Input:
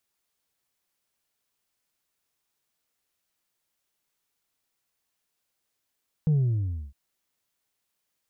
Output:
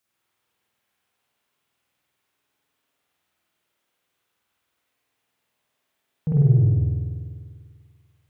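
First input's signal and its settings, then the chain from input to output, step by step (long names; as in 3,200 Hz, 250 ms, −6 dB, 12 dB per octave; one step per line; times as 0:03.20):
bass drop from 160 Hz, over 0.66 s, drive 2 dB, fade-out 0.62 s, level −19 dB
high-pass filter 71 Hz
spring reverb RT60 1.9 s, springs 49 ms, chirp 75 ms, DRR −8.5 dB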